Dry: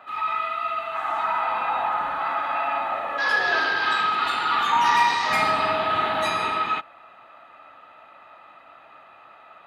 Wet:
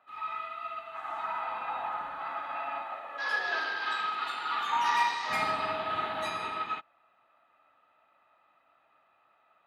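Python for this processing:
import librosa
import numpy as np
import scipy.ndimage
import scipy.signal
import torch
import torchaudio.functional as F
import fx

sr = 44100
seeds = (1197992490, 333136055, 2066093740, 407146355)

y = fx.low_shelf(x, sr, hz=240.0, db=-10.5, at=(2.82, 5.28))
y = fx.upward_expand(y, sr, threshold_db=-41.0, expansion=1.5)
y = F.gain(torch.from_numpy(y), -6.5).numpy()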